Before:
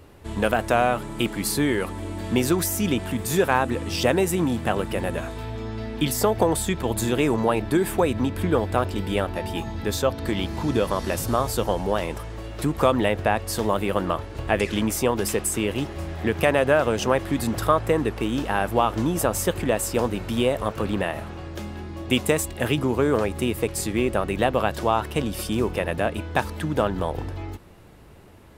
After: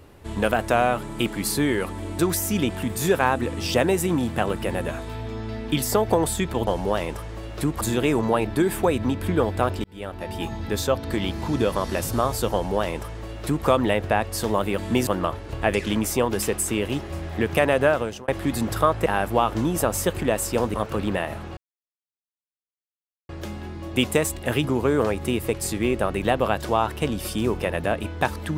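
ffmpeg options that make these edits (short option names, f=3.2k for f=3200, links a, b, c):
-filter_complex "[0:a]asplit=11[a][b][c][d][e][f][g][h][i][j][k];[a]atrim=end=2.192[l];[b]atrim=start=2.478:end=6.962[m];[c]atrim=start=11.678:end=12.822[n];[d]atrim=start=6.958:end=8.99,asetpts=PTS-STARTPTS,afade=t=out:st=2.028:d=0.004:c=hsin[o];[e]atrim=start=8.99:end=13.932,asetpts=PTS-STARTPTS,afade=t=in:d=0.62[p];[f]atrim=start=2.188:end=2.482[q];[g]atrim=start=13.928:end=17.14,asetpts=PTS-STARTPTS,afade=t=out:st=2.812:d=0.4[r];[h]atrim=start=17.14:end=17.922,asetpts=PTS-STARTPTS,afade=t=in:d=0.004:c=hsin[s];[i]atrim=start=18.468:end=20.152[t];[j]atrim=start=20.598:end=21.43,asetpts=PTS-STARTPTS,afade=t=out:st=0.828:d=0.004:c=hsin,apad=pad_dur=1.72[u];[k]atrim=start=21.43,asetpts=PTS-STARTPTS,afade=t=in:d=0.004:c=hsin[v];[l][m]acrossfade=d=0.004:c1=hsin:c2=hsin[w];[w][n]acrossfade=d=0.004:c1=hsin:c2=hsin[x];[o][p]concat=n=2:v=0:a=1[y];[x][y]acrossfade=d=0.004:c1=hsin:c2=hsin[z];[z][q]acrossfade=d=0.004:c1=hsin:c2=hsin[aa];[r][s]concat=n=2:v=0:a=1[ab];[aa][ab]acrossfade=d=0.004:c1=hsin:c2=hsin[ac];[ac][t]acrossfade=d=0.004:c1=hsin:c2=hsin[ad];[u][v]concat=n=2:v=0:a=1[ae];[ad][ae]acrossfade=d=0.004:c1=hsin:c2=hsin"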